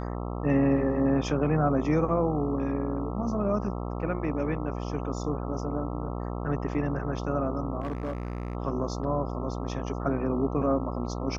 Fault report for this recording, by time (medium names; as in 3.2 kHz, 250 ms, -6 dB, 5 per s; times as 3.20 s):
buzz 60 Hz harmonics 22 -33 dBFS
7.80–8.55 s: clipped -27.5 dBFS